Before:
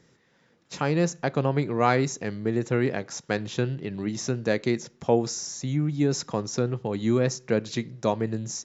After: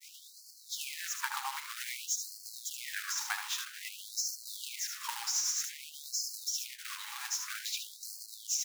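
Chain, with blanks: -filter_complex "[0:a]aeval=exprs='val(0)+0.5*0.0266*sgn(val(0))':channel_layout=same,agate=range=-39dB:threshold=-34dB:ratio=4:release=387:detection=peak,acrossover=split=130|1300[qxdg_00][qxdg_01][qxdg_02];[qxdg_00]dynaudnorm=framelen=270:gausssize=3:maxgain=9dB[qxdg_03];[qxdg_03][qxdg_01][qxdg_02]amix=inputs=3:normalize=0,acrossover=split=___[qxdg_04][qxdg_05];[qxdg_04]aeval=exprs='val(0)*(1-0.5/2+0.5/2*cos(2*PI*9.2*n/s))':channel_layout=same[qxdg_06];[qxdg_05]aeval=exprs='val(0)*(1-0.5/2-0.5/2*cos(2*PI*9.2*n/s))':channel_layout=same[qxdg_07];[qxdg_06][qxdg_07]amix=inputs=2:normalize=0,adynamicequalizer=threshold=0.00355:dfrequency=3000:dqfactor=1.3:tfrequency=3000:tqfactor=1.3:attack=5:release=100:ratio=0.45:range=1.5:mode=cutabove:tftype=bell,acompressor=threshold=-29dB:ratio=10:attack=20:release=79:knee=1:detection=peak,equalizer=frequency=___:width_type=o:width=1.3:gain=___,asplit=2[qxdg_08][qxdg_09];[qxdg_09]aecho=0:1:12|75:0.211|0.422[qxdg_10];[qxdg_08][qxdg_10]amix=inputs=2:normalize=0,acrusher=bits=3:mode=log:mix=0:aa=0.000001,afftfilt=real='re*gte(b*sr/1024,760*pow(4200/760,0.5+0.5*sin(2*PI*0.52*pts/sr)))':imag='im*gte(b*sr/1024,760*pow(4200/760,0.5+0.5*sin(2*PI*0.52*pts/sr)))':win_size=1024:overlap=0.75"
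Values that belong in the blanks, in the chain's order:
530, 510, 6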